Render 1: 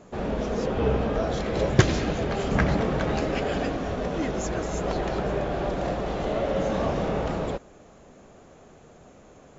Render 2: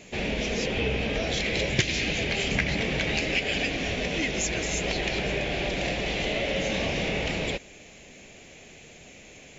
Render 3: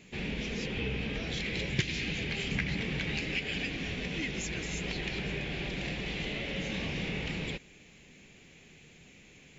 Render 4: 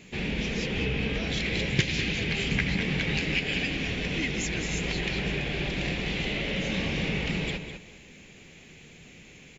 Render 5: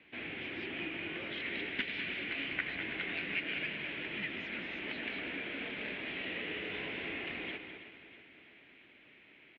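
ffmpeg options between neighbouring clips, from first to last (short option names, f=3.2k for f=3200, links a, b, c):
-af "highshelf=f=1.7k:t=q:w=3:g=10.5,acompressor=threshold=-25dB:ratio=2.5"
-af "equalizer=f=160:t=o:w=0.67:g=5,equalizer=f=630:t=o:w=0.67:g=-10,equalizer=f=6.3k:t=o:w=0.67:g=-5,volume=-6.5dB"
-filter_complex "[0:a]asplit=2[a][b];[b]adelay=201,lowpass=f=4.8k:p=1,volume=-8dB,asplit=2[c][d];[d]adelay=201,lowpass=f=4.8k:p=1,volume=0.26,asplit=2[e][f];[f]adelay=201,lowpass=f=4.8k:p=1,volume=0.26[g];[a][c][e][g]amix=inputs=4:normalize=0,volume=5dB"
-af "aecho=1:1:323|646|969|1292|1615|1938:0.224|0.121|0.0653|0.0353|0.019|0.0103,highpass=f=360:t=q:w=0.5412,highpass=f=360:t=q:w=1.307,lowpass=f=3.4k:t=q:w=0.5176,lowpass=f=3.4k:t=q:w=0.7071,lowpass=f=3.4k:t=q:w=1.932,afreqshift=-120,volume=-7dB"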